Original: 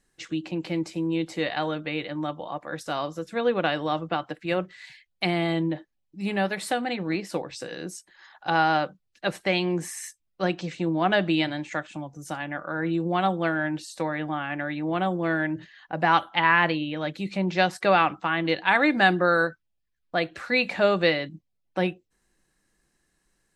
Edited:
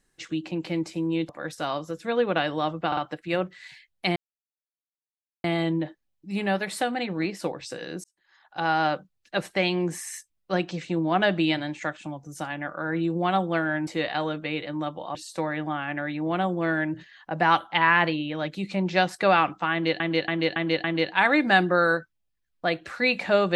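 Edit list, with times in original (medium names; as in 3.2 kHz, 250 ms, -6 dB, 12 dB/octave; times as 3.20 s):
1.29–2.57 s: move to 13.77 s
4.15 s: stutter 0.05 s, 3 plays
5.34 s: insert silence 1.28 s
7.94–8.83 s: fade in
18.34–18.62 s: loop, 5 plays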